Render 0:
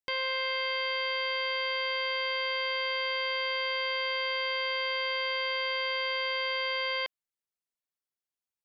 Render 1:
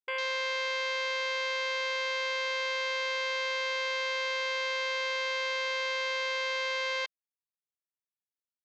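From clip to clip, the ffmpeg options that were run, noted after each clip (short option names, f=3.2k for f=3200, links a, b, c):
-af "afwtdn=0.02"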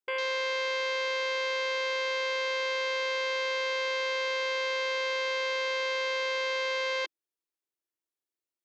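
-af "highpass=f=330:t=q:w=3.8"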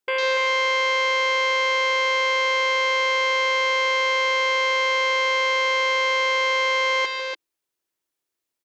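-af "aecho=1:1:148.7|288.6:0.316|0.501,volume=8dB"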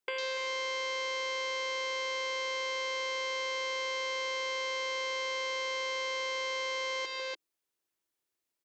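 -filter_complex "[0:a]acrossover=split=430|930|3800[a][b][c][d];[a]acompressor=threshold=-41dB:ratio=4[e];[b]acompressor=threshold=-42dB:ratio=4[f];[c]acompressor=threshold=-37dB:ratio=4[g];[d]acompressor=threshold=-36dB:ratio=4[h];[e][f][g][h]amix=inputs=4:normalize=0,volume=-3.5dB"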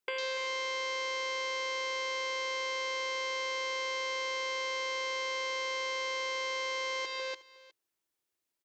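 -af "aecho=1:1:363:0.106"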